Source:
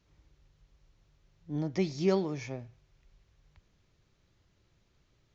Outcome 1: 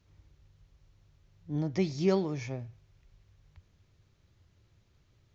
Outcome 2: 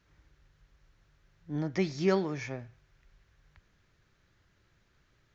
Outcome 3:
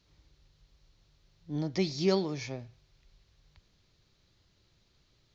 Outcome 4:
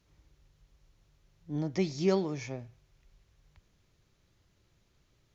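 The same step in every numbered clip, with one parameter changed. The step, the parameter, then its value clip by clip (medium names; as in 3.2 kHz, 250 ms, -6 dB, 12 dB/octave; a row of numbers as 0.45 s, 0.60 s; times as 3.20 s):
peaking EQ, frequency: 92 Hz, 1.6 kHz, 4.3 kHz, 11 kHz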